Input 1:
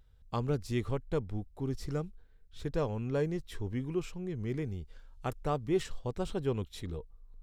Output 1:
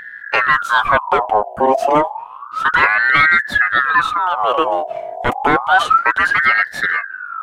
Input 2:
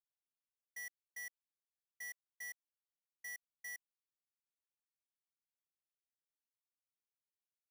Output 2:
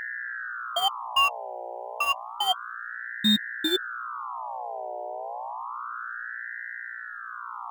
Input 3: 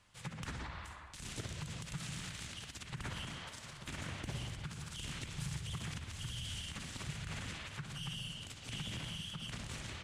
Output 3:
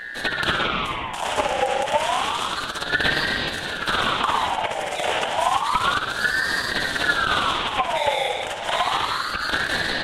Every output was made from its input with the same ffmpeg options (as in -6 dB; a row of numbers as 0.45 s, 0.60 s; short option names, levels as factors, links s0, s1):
-af "highshelf=f=2900:t=q:w=3:g=-7,apsyclip=26.6,aeval=exprs='val(0)+0.0501*(sin(2*PI*60*n/s)+sin(2*PI*2*60*n/s)/2+sin(2*PI*3*60*n/s)/3+sin(2*PI*4*60*n/s)/4+sin(2*PI*5*60*n/s)/5)':c=same,flanger=delay=3.2:depth=4.9:regen=-29:speed=0.21:shape=triangular,aeval=exprs='val(0)*sin(2*PI*1200*n/s+1200*0.45/0.3*sin(2*PI*0.3*n/s))':c=same,volume=0.891"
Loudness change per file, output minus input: +21.5 LU, +20.0 LU, +21.5 LU